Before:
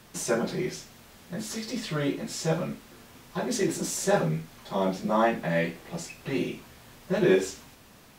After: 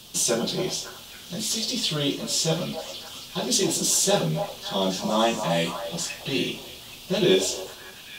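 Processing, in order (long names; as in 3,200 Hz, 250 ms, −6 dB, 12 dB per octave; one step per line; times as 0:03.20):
high shelf with overshoot 2,500 Hz +8 dB, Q 3
on a send: echo through a band-pass that steps 276 ms, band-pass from 800 Hz, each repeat 0.7 octaves, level −4.5 dB
on the sum: level +1.5 dB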